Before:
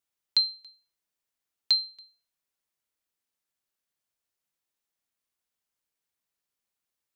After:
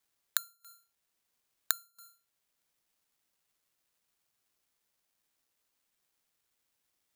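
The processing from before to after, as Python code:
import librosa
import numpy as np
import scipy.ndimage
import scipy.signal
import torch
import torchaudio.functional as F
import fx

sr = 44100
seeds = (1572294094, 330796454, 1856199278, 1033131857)

y = fx.peak_eq(x, sr, hz=4100.0, db=-6.0, octaves=2.4)
y = fx.env_lowpass_down(y, sr, base_hz=930.0, full_db=-34.0)
y = fx.high_shelf(y, sr, hz=2300.0, db=10.0)
y = (np.kron(y[::8], np.eye(8)[0]) * 8)[:len(y)]
y = y * librosa.db_to_amplitude(-7.5)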